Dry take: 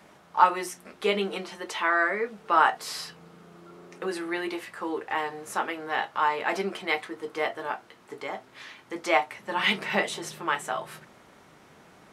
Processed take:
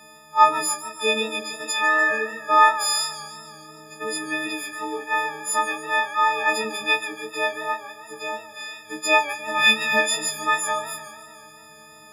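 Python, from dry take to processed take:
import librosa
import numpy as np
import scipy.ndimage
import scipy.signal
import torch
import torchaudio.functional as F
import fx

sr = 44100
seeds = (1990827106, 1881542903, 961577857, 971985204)

y = fx.freq_snap(x, sr, grid_st=6)
y = fx.echo_warbled(y, sr, ms=148, feedback_pct=64, rate_hz=2.8, cents=113, wet_db=-15.0)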